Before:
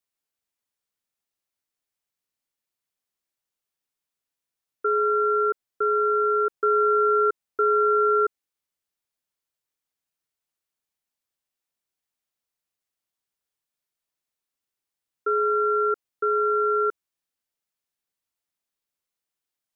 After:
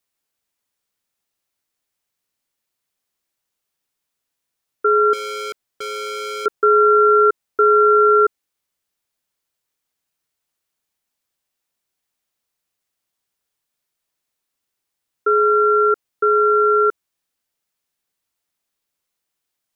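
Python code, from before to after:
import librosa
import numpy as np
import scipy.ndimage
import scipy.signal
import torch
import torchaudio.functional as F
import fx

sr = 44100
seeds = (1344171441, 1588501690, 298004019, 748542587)

y = fx.overload_stage(x, sr, gain_db=34.0, at=(5.13, 6.46))
y = y * librosa.db_to_amplitude(7.5)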